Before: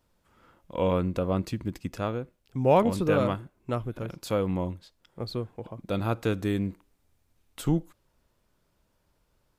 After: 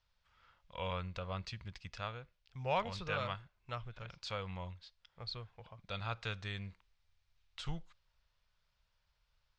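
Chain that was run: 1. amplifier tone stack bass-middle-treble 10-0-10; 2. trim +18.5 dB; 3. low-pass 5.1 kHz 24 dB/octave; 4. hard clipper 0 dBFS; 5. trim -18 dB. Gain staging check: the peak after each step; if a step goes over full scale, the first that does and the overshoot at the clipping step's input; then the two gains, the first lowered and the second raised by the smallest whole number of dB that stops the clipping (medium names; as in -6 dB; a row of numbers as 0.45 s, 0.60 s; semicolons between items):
-21.0 dBFS, -2.5 dBFS, -2.5 dBFS, -2.5 dBFS, -20.5 dBFS; nothing clips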